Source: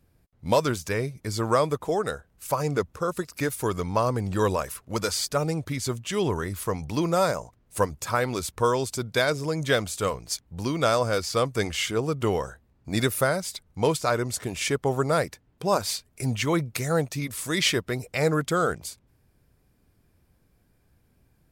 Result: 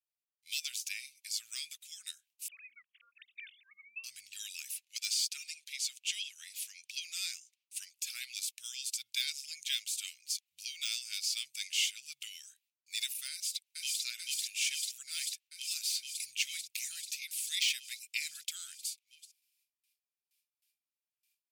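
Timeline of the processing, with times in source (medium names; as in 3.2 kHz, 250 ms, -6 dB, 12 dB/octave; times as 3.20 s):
2.48–4.04 s: formants replaced by sine waves
4.83–7.96 s: frequency weighting A
13.31–14.03 s: echo throw 440 ms, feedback 80%, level -0.5 dB
whole clip: de-esser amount 55%; gate with hold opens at -53 dBFS; elliptic high-pass 2.5 kHz, stop band 60 dB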